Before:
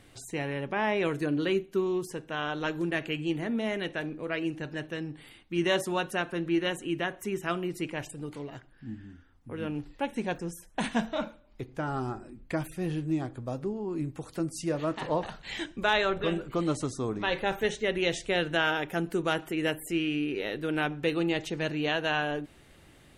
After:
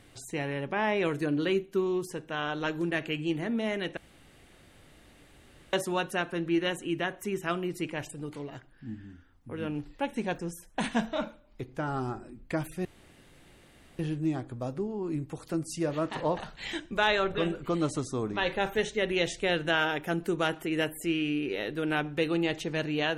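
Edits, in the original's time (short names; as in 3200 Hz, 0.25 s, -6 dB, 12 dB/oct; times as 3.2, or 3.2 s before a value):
3.97–5.73 room tone
12.85 insert room tone 1.14 s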